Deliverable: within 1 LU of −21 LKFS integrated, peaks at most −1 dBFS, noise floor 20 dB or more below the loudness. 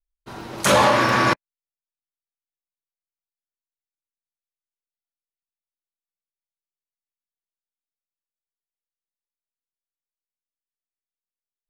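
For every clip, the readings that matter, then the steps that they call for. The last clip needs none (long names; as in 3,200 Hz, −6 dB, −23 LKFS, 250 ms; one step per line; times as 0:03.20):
number of dropouts 2; longest dropout 1.4 ms; integrated loudness −18.0 LKFS; sample peak −5.5 dBFS; target loudness −21.0 LKFS
→ repair the gap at 0:00.41/0:01.09, 1.4 ms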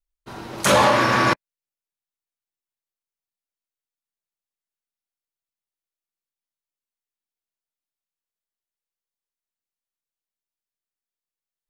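number of dropouts 0; integrated loudness −18.0 LKFS; sample peak −5.5 dBFS; target loudness −21.0 LKFS
→ level −3 dB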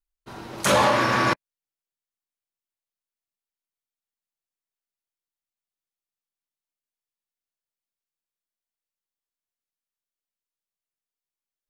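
integrated loudness −21.0 LKFS; sample peak −8.5 dBFS; background noise floor −93 dBFS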